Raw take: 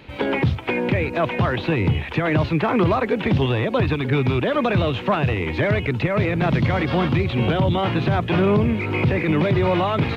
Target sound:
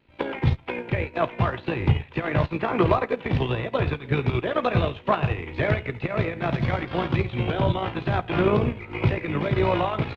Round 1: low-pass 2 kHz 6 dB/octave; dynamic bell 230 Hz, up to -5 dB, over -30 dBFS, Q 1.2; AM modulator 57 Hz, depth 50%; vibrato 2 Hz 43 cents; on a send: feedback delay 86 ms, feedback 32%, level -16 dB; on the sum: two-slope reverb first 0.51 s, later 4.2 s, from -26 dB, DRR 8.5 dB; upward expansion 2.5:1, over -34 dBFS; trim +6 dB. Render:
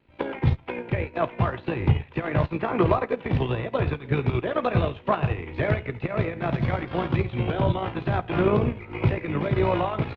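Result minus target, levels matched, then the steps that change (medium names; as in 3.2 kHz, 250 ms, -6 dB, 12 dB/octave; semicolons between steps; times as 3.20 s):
4 kHz band -3.5 dB
change: low-pass 4.8 kHz 6 dB/octave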